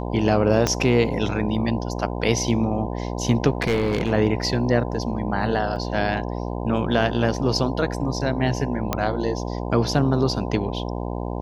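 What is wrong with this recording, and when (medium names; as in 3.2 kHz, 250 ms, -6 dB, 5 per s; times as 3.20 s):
buzz 60 Hz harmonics 17 -28 dBFS
0.67 s: pop -6 dBFS
3.61–4.13 s: clipped -16 dBFS
5.76 s: dropout 3.8 ms
8.93 s: pop -7 dBFS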